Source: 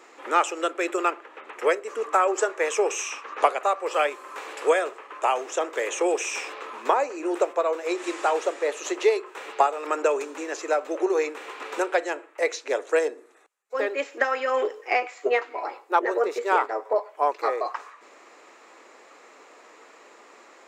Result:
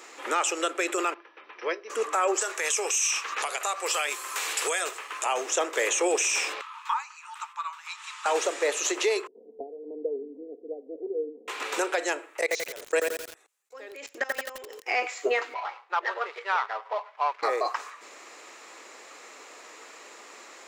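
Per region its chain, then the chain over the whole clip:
0:01.14–0:01.90: downward expander −46 dBFS + linear-phase brick-wall low-pass 6,100 Hz + tuned comb filter 340 Hz, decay 0.17 s, harmonics odd, mix 70%
0:02.41–0:05.26: spectral tilt +3 dB per octave + notch filter 570 Hz, Q 16 + downward compressor 4 to 1, threshold −27 dBFS
0:06.61–0:08.26: Chebyshev high-pass with heavy ripple 870 Hz, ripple 6 dB + high-shelf EQ 2,000 Hz −10.5 dB
0:09.27–0:11.48: Gaussian smoothing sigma 24 samples + comb filter 4.3 ms, depth 81%
0:12.41–0:14.88: parametric band 1,300 Hz −2 dB 0.66 octaves + output level in coarse steps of 22 dB + feedback echo at a low word length 86 ms, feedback 55%, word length 7 bits, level −4 dB
0:15.54–0:17.43: running median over 15 samples + flat-topped band-pass 1,700 Hz, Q 0.7
whole clip: high-shelf EQ 2,400 Hz +11 dB; brickwall limiter −16 dBFS

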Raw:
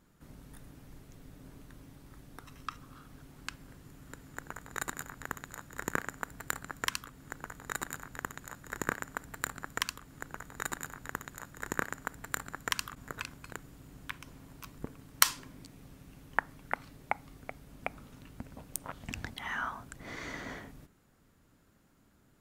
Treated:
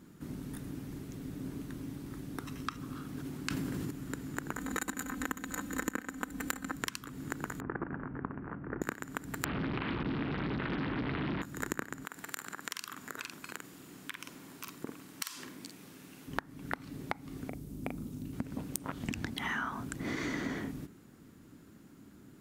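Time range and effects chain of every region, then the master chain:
0:03.06–0:03.91: high-pass filter 58 Hz + level that may fall only so fast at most 23 dB per second
0:04.57–0:06.76: notch filter 5,000 Hz, Q 13 + comb filter 3.9 ms, depth 95%
0:07.60–0:08.82: variable-slope delta modulation 16 kbit/s + low-pass filter 1,500 Hz 24 dB per octave
0:09.44–0:11.42: linear delta modulator 16 kbit/s, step −29.5 dBFS + highs frequency-modulated by the lows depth 0.93 ms
0:12.05–0:16.28: high-pass filter 790 Hz 6 dB per octave + double-tracking delay 47 ms −6 dB + downward compressor 3 to 1, threshold −44 dBFS
0:17.49–0:18.33: parametric band 1,700 Hz −14.5 dB 2.9 octaves + double-tracking delay 40 ms −4.5 dB
whole clip: high-pass filter 200 Hz 6 dB per octave; low shelf with overshoot 430 Hz +8 dB, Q 1.5; downward compressor 12 to 1, threshold −38 dBFS; level +6.5 dB

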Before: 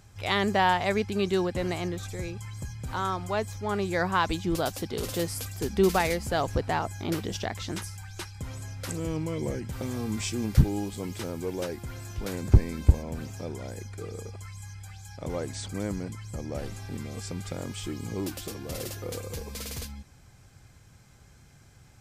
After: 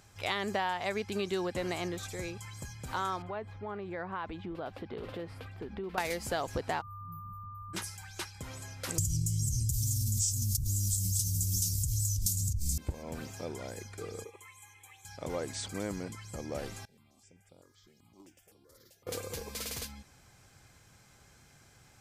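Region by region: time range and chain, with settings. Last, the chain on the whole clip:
0:03.22–0:05.98: high-frequency loss of the air 470 metres + downward compressor, threshold −32 dBFS
0:06.80–0:07.73: inverse Chebyshev band-stop filter 680–4,900 Hz, stop band 80 dB + parametric band 410 Hz −10.5 dB 0.78 octaves + steady tone 1,200 Hz −44 dBFS
0:08.98–0:12.78: elliptic band-stop filter 110–6,300 Hz, stop band 70 dB + envelope flattener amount 100%
0:14.24–0:15.05: high-pass filter 200 Hz + phaser with its sweep stopped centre 990 Hz, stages 8
0:16.85–0:19.07: noise gate −28 dBFS, range −20 dB + step-sequenced phaser 7.8 Hz 300–6,400 Hz
whole clip: low-shelf EQ 230 Hz −9.5 dB; downward compressor 6 to 1, threshold −29 dBFS

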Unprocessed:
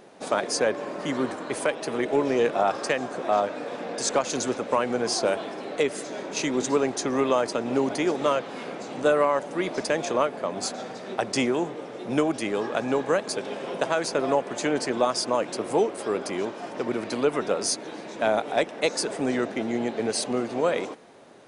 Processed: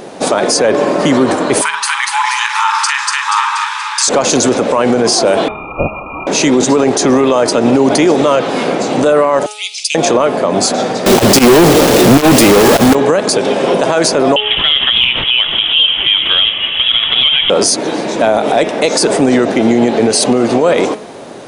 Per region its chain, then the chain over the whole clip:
0:01.61–0:04.08: linear-phase brick-wall high-pass 830 Hz + double-tracking delay 45 ms −11 dB + echo with a time of its own for lows and highs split 1,300 Hz, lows 84 ms, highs 239 ms, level −4.5 dB
0:05.48–0:06.27: linear-phase brick-wall band-stop 230–1,200 Hz + voice inversion scrambler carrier 2,600 Hz
0:09.46–0:09.95: Butterworth high-pass 2,400 Hz 72 dB per octave + upward compression, threshold −47 dBFS
0:11.06–0:12.95: low-shelf EQ 180 Hz +6 dB + log-companded quantiser 2 bits
0:14.36–0:17.50: variable-slope delta modulation 64 kbit/s + voice inversion scrambler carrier 3,600 Hz + highs frequency-modulated by the lows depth 0.19 ms
whole clip: parametric band 1,700 Hz −3.5 dB 1.5 octaves; hum removal 211 Hz, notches 18; boost into a limiter +22.5 dB; level −1 dB

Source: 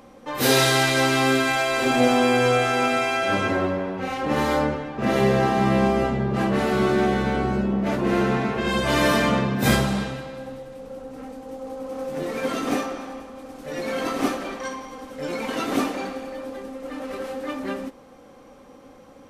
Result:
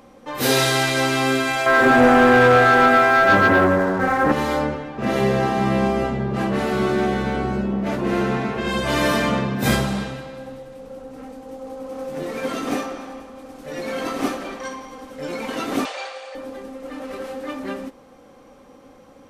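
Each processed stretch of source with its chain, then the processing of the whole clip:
0:01.66–0:04.32: high shelf with overshoot 2,200 Hz −9.5 dB, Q 3 + leveller curve on the samples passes 2
0:15.85–0:16.35: elliptic band-pass filter 550–8,700 Hz + parametric band 3,800 Hz +7.5 dB 1.5 octaves
whole clip: no processing

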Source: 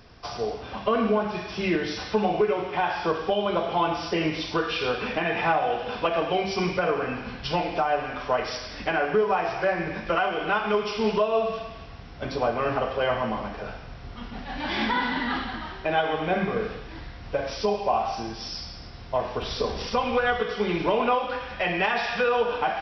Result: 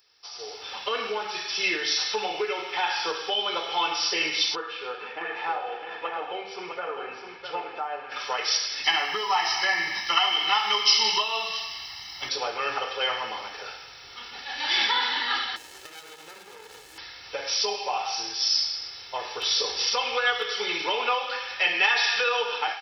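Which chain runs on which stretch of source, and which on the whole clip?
0:04.55–0:08.12: Bessel low-pass filter 880 Hz + spectral tilt +2 dB per octave + single-tap delay 657 ms −7 dB
0:08.84–0:12.29: high-shelf EQ 4,100 Hz +9.5 dB + comb filter 1 ms, depth 81%
0:15.56–0:16.98: downward compressor 20 to 1, threshold −34 dBFS + windowed peak hold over 33 samples
whole clip: first difference; comb filter 2.3 ms, depth 60%; automatic gain control gain up to 16 dB; level −2 dB

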